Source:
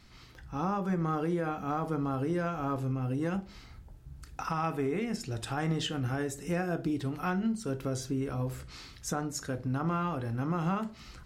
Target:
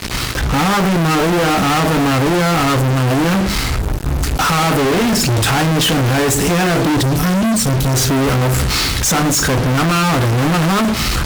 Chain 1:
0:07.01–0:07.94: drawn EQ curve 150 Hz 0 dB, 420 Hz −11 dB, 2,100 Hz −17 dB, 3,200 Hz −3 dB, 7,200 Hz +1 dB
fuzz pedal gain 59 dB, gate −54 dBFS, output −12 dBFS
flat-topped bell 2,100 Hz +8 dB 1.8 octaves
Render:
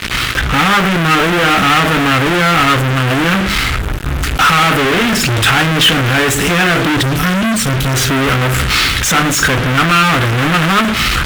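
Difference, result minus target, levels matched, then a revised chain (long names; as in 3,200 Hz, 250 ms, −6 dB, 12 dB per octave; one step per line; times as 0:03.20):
2,000 Hz band +5.0 dB
0:07.01–0:07.94: drawn EQ curve 150 Hz 0 dB, 420 Hz −11 dB, 2,100 Hz −17 dB, 3,200 Hz −3 dB, 7,200 Hz +1 dB
fuzz pedal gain 59 dB, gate −54 dBFS, output −12 dBFS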